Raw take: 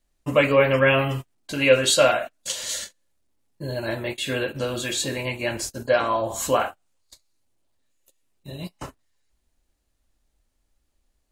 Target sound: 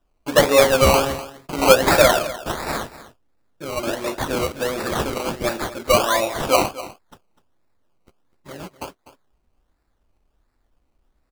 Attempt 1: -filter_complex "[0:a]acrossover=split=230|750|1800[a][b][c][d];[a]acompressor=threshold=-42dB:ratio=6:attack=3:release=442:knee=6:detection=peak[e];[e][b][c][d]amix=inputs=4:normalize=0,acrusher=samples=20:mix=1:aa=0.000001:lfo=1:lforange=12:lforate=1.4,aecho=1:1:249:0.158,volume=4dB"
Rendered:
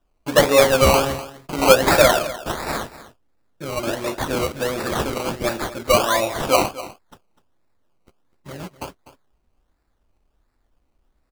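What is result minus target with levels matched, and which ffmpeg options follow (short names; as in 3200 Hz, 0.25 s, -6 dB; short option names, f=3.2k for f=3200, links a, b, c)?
compressor: peak gain reduction -9.5 dB
-filter_complex "[0:a]acrossover=split=230|750|1800[a][b][c][d];[a]acompressor=threshold=-53.5dB:ratio=6:attack=3:release=442:knee=6:detection=peak[e];[e][b][c][d]amix=inputs=4:normalize=0,acrusher=samples=20:mix=1:aa=0.000001:lfo=1:lforange=12:lforate=1.4,aecho=1:1:249:0.158,volume=4dB"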